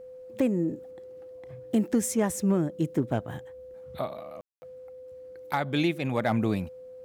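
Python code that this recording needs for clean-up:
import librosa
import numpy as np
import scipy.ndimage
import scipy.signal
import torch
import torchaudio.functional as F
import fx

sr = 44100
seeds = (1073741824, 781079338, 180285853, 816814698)

y = fx.fix_declip(x, sr, threshold_db=-16.0)
y = fx.notch(y, sr, hz=510.0, q=30.0)
y = fx.fix_ambience(y, sr, seeds[0], print_start_s=3.4, print_end_s=3.9, start_s=4.41, end_s=4.62)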